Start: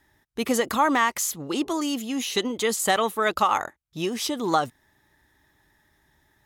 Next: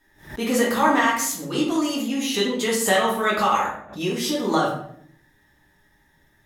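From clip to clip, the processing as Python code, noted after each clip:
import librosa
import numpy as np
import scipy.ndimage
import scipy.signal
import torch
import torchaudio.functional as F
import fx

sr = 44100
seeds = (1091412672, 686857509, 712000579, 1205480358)

y = fx.room_shoebox(x, sr, seeds[0], volume_m3=110.0, walls='mixed', distance_m=1.8)
y = fx.pre_swell(y, sr, db_per_s=130.0)
y = F.gain(torch.from_numpy(y), -4.5).numpy()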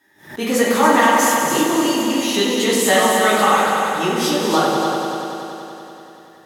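y = scipy.signal.sosfilt(scipy.signal.butter(2, 170.0, 'highpass', fs=sr, output='sos'), x)
y = fx.echo_heads(y, sr, ms=95, heads='all three', feedback_pct=67, wet_db=-9.0)
y = F.gain(torch.from_numpy(y), 3.5).numpy()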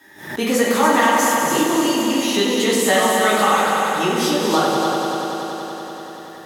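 y = fx.band_squash(x, sr, depth_pct=40)
y = F.gain(torch.from_numpy(y), -1.0).numpy()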